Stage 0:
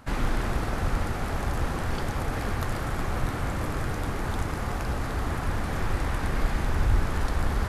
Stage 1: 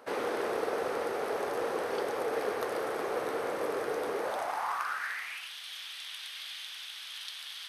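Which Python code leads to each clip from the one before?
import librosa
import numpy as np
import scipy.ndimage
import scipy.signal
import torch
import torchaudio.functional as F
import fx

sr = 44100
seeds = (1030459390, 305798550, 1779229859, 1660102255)

y = fx.notch(x, sr, hz=7200.0, q=6.1)
y = fx.filter_sweep_highpass(y, sr, from_hz=450.0, to_hz=3300.0, start_s=4.17, end_s=5.53, q=4.5)
y = y * 10.0 ** (-4.0 / 20.0)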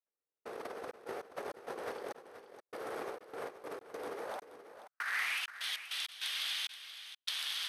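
y = fx.over_compress(x, sr, threshold_db=-38.0, ratio=-0.5)
y = fx.step_gate(y, sr, bpm=99, pattern='...xxx.x.x.xxx.', floor_db=-60.0, edge_ms=4.5)
y = y + 10.0 ** (-12.0 / 20.0) * np.pad(y, (int(478 * sr / 1000.0), 0))[:len(y)]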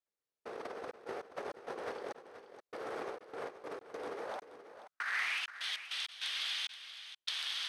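y = scipy.signal.sosfilt(scipy.signal.butter(2, 7200.0, 'lowpass', fs=sr, output='sos'), x)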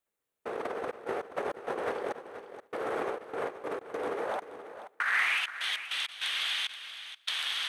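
y = fx.peak_eq(x, sr, hz=5000.0, db=-10.0, octaves=0.74)
y = fx.echo_feedback(y, sr, ms=276, feedback_pct=15, wet_db=-21.0)
y = y * 10.0 ** (8.5 / 20.0)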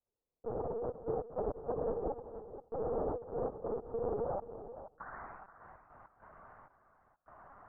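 y = scipy.signal.sosfilt(scipy.signal.bessel(8, 620.0, 'lowpass', norm='mag', fs=sr, output='sos'), x)
y = fx.lpc_vocoder(y, sr, seeds[0], excitation='pitch_kept', order=10)
y = y * 10.0 ** (1.0 / 20.0)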